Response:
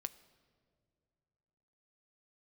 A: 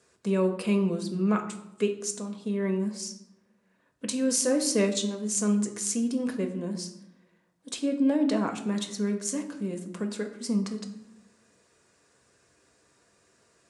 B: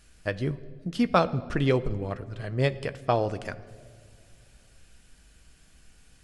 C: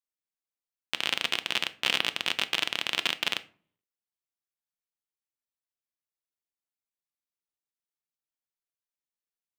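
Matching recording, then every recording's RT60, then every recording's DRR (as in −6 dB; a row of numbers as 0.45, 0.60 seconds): B; 0.85 s, non-exponential decay, 0.45 s; 3.5, 11.5, 11.5 decibels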